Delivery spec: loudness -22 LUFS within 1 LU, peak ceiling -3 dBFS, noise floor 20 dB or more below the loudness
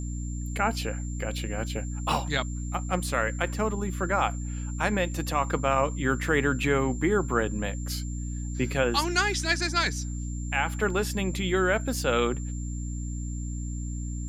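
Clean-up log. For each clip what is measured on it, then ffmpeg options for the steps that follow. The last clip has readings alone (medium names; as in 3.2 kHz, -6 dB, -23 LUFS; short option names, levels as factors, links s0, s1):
hum 60 Hz; highest harmonic 300 Hz; hum level -30 dBFS; steady tone 7.3 kHz; tone level -44 dBFS; loudness -28.0 LUFS; peak level -10.0 dBFS; loudness target -22.0 LUFS
-> -af "bandreject=f=60:t=h:w=6,bandreject=f=120:t=h:w=6,bandreject=f=180:t=h:w=6,bandreject=f=240:t=h:w=6,bandreject=f=300:t=h:w=6"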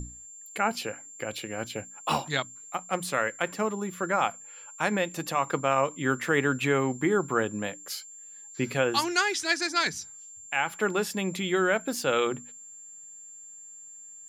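hum not found; steady tone 7.3 kHz; tone level -44 dBFS
-> -af "bandreject=f=7300:w=30"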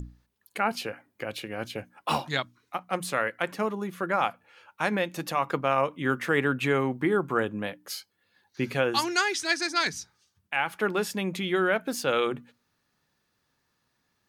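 steady tone not found; loudness -28.5 LUFS; peak level -11.0 dBFS; loudness target -22.0 LUFS
-> -af "volume=2.11"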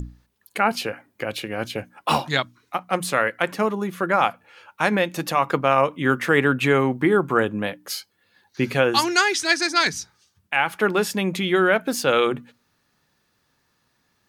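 loudness -22.0 LUFS; peak level -4.5 dBFS; noise floor -69 dBFS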